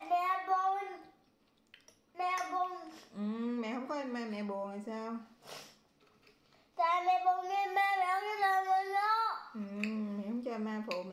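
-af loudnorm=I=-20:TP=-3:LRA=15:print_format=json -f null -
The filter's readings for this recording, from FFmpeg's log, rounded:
"input_i" : "-34.5",
"input_tp" : "-18.6",
"input_lra" : "6.8",
"input_thresh" : "-45.4",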